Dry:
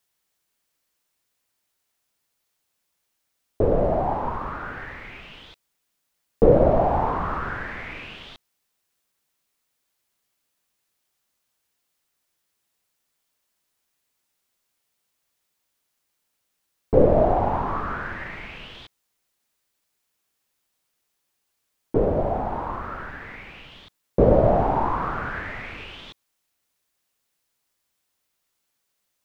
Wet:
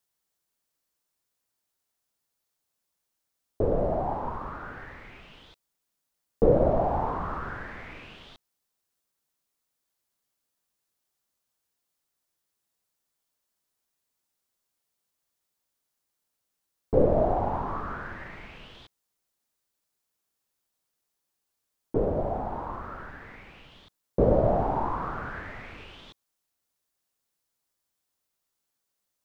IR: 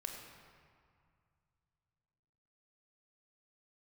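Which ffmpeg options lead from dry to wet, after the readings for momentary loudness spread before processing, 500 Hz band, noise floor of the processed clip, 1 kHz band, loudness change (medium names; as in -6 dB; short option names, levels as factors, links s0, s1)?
21 LU, -5.0 dB, -82 dBFS, -5.5 dB, -5.0 dB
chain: -af "equalizer=f=2400:w=1.1:g=-4.5,volume=0.562"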